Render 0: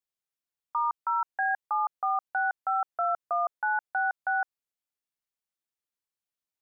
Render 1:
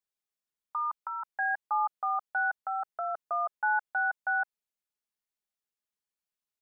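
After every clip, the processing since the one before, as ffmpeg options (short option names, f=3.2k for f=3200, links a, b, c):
-af "aecho=1:1:4.8:0.62,volume=-3.5dB"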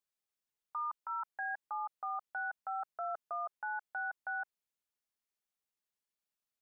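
-af "alimiter=level_in=6dB:limit=-24dB:level=0:latency=1:release=34,volume=-6dB,volume=-1.5dB"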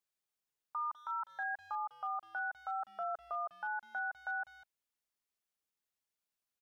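-filter_complex "[0:a]asplit=2[a][b];[b]adelay=200,highpass=300,lowpass=3.4k,asoftclip=type=hard:threshold=-39.5dB,volume=-16dB[c];[a][c]amix=inputs=2:normalize=0"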